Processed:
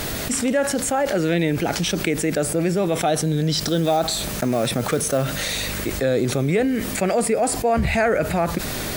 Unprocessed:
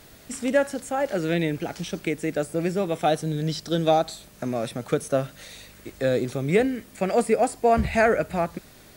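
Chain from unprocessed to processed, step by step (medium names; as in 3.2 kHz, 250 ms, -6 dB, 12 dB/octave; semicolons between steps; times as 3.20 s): 3.57–6.02 s: block-companded coder 5-bit; level flattener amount 70%; trim -1.5 dB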